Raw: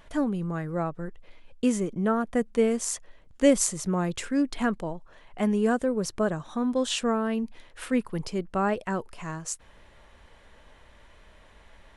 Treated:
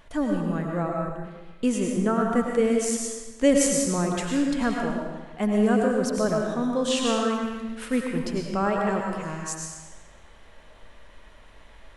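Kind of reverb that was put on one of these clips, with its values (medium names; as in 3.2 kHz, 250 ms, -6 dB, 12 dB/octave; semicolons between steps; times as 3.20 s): algorithmic reverb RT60 1.2 s, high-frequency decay 0.95×, pre-delay 65 ms, DRR 0 dB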